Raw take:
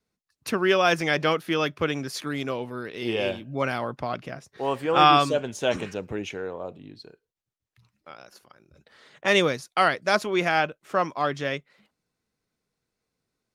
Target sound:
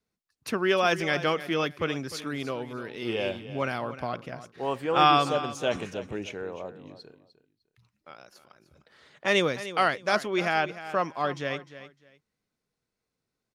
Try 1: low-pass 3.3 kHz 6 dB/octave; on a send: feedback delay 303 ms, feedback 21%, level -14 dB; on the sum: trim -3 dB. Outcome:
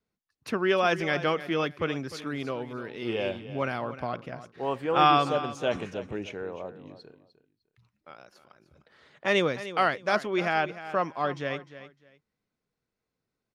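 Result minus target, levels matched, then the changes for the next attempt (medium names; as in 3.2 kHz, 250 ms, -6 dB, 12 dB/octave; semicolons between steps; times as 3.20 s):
8 kHz band -5.5 dB
change: low-pass 13 kHz 6 dB/octave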